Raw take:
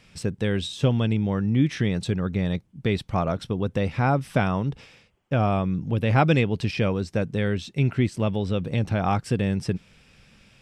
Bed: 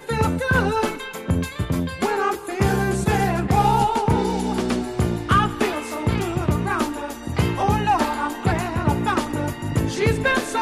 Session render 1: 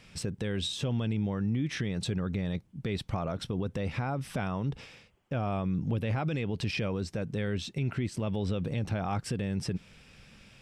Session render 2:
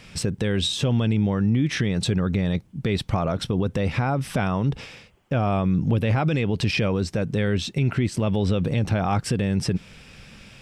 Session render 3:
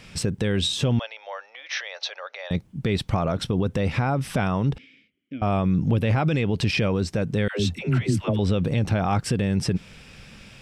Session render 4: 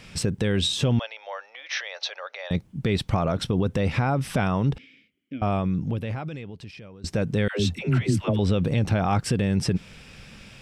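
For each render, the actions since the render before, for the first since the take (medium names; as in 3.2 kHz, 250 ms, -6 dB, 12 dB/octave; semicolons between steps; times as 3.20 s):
compression 2:1, threshold -24 dBFS, peak gain reduction 6 dB; peak limiter -23 dBFS, peak gain reduction 10.5 dB
trim +9 dB
0.99–2.51 s: Chebyshev band-pass 550–6000 Hz, order 5; 4.78–5.42 s: vowel filter i; 7.48–8.39 s: phase dispersion lows, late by 120 ms, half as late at 530 Hz
5.36–7.04 s: fade out quadratic, to -22.5 dB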